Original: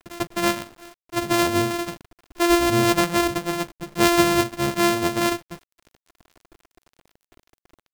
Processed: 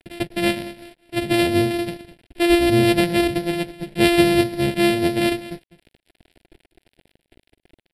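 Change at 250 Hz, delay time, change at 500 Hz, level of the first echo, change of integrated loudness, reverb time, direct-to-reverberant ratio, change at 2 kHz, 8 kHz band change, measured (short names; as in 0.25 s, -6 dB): +4.0 dB, 0.203 s, +2.5 dB, -16.0 dB, +2.0 dB, none, none, +1.0 dB, -5.0 dB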